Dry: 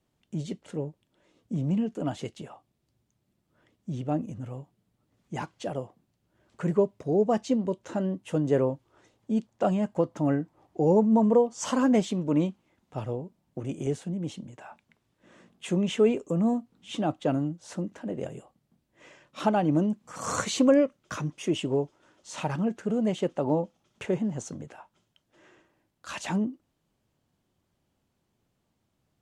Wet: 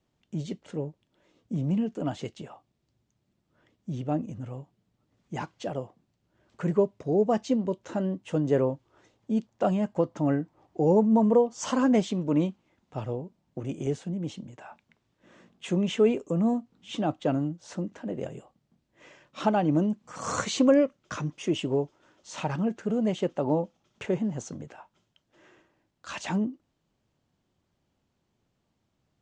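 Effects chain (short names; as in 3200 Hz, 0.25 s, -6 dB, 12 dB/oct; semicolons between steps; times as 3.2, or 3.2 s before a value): LPF 7500 Hz 24 dB/oct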